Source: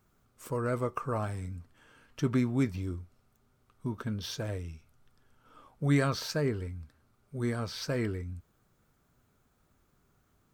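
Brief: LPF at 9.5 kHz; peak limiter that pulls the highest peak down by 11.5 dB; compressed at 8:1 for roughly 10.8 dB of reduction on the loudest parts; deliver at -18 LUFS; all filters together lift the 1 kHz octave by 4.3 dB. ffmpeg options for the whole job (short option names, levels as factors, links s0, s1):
-af "lowpass=9500,equalizer=f=1000:t=o:g=5.5,acompressor=threshold=0.0224:ratio=8,volume=15.8,alimiter=limit=0.398:level=0:latency=1"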